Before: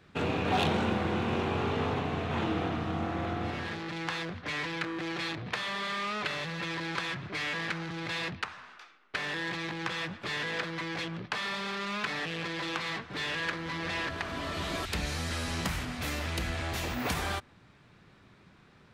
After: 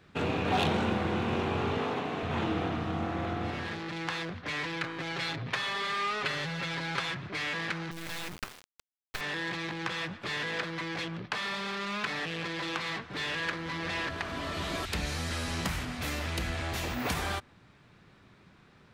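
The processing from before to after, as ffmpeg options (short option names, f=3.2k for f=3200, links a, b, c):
-filter_complex "[0:a]asettb=1/sr,asplit=3[a][b][c];[a]atrim=end=1.784[d];[b]atrim=start=1.78:end=2.23,asetpts=PTS-STARTPTS,afade=t=in:d=0.004:c=qsin,afade=t=out:st=0.446:d=0.004:c=qsin,highpass=200[e];[c]atrim=start=2.226[f];[d][e]acrossfade=d=0.004:c1=hsin:c2=qsin[g];[g][f]acrossfade=d=0.004:c1=qsin:c2=hsin,asettb=1/sr,asplit=3[h][i][j];[h]atrim=end=4.834[k];[i]atrim=start=4.83:end=7.11,asetpts=PTS-STARTPTS,afade=t=in:d=0.004:c=qsin,afade=t=out:st=2.276:d=0.004:c=qsin,aecho=1:1:7.4:0.65,atrim=end_sample=100548[l];[j]atrim=start=7.106[m];[k][l]acrossfade=d=0.004:c1=hsin:c2=qsin[n];[n][m]acrossfade=d=0.004:c1=qsin:c2=hsin,asettb=1/sr,asplit=3[o][p][q];[o]atrim=end=7.914[r];[p]atrim=start=7.91:end=9.21,asetpts=PTS-STARTPTS,afade=t=in:d=0.004:c=qsin,afade=t=out:st=1.296:d=0.004:c=qsin,acrusher=bits=4:dc=4:mix=0:aa=0.000001[s];[q]atrim=start=9.206[t];[r][s]acrossfade=d=0.004:c1=hsin:c2=qsin[u];[u][t]acrossfade=d=0.004:c1=qsin:c2=hsin"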